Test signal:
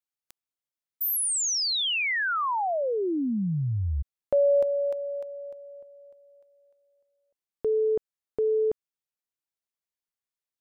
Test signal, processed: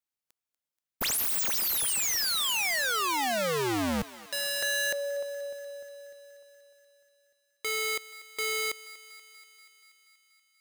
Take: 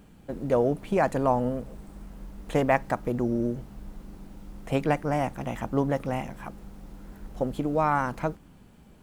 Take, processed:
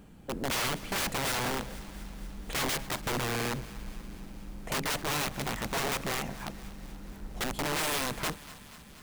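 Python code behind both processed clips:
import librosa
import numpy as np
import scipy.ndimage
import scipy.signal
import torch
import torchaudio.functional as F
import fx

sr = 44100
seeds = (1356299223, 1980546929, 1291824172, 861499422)

y = (np.mod(10.0 ** (25.5 / 20.0) * x + 1.0, 2.0) - 1.0) / 10.0 ** (25.5 / 20.0)
y = fx.echo_thinned(y, sr, ms=240, feedback_pct=71, hz=510.0, wet_db=-17)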